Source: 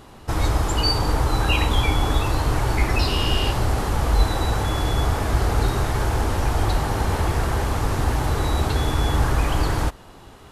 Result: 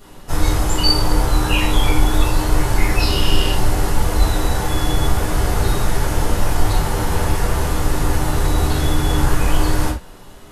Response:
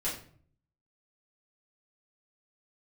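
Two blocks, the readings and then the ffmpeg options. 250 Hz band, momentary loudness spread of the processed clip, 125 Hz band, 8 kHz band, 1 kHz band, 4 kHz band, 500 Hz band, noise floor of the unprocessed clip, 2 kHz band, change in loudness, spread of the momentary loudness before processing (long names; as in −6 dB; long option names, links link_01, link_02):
+4.5 dB, 3 LU, +2.0 dB, +7.0 dB, +1.5 dB, +4.0 dB, +2.5 dB, −45 dBFS, +2.5 dB, +3.0 dB, 3 LU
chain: -filter_complex "[0:a]highshelf=frequency=5700:gain=10[link_01];[1:a]atrim=start_sample=2205,atrim=end_sample=4410[link_02];[link_01][link_02]afir=irnorm=-1:irlink=0,volume=-3dB"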